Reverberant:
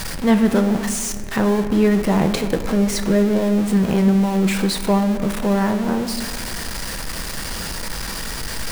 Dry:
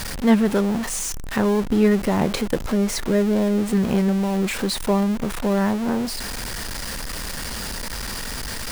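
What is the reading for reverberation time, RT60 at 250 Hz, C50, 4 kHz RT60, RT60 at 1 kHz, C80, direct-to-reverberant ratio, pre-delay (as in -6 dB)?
2.0 s, 2.5 s, 9.0 dB, 1.1 s, 1.8 s, 10.5 dB, 7.0 dB, 5 ms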